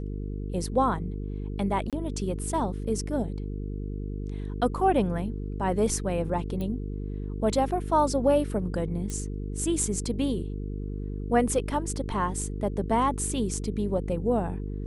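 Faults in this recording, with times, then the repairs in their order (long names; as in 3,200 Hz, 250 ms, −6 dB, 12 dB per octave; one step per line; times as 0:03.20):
mains buzz 50 Hz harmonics 9 −33 dBFS
0:01.90–0:01.93: drop-out 27 ms
0:06.61: click −22 dBFS
0:09.10: click −21 dBFS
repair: click removal
hum removal 50 Hz, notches 9
repair the gap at 0:01.90, 27 ms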